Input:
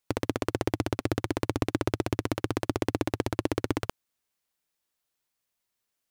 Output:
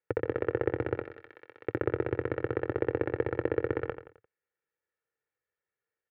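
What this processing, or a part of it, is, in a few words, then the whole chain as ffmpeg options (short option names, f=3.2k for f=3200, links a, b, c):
bass cabinet: -filter_complex "[0:a]asettb=1/sr,asplit=3[a][b][c];[a]atrim=end=1.014[d];[b]atrim=start=1.01:end=1.68,asetpts=PTS-STARTPTS,afade=t=in:d=0.004:c=qsin,afade=t=out:st=0.666:d=0.004:c=qsin,aderivative[e];[c]atrim=start=1.676[f];[d][e]acrossfade=d=0.004:c1=hsin:c2=qsin[g];[g][f]acrossfade=d=0.004:c1=qsin:c2=hsin,highpass=84,equalizer=f=270:t=q:w=4:g=-3,equalizer=f=470:t=q:w=4:g=7,equalizer=f=950:t=q:w=4:g=-8,equalizer=f=1.7k:t=q:w=4:g=6,lowpass=f=2.1k:w=0.5412,lowpass=f=2.1k:w=1.3066,aecho=1:1:2.2:0.56,aecho=1:1:87|174|261|348:0.316|0.13|0.0532|0.0218,volume=-4dB"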